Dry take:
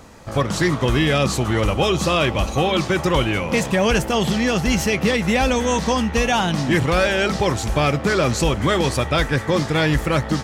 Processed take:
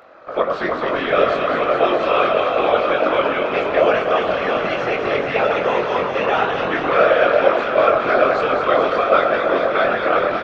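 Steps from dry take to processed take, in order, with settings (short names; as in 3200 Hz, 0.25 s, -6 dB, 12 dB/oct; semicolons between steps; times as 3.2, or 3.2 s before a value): speaker cabinet 480–3200 Hz, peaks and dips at 600 Hz +10 dB, 880 Hz -7 dB, 1300 Hz +8 dB, 1900 Hz -4 dB, 3000 Hz -5 dB; echo with dull and thin repeats by turns 0.105 s, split 1400 Hz, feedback 89%, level -4 dB; whisperiser; doubler 22 ms -7 dB; gain -1 dB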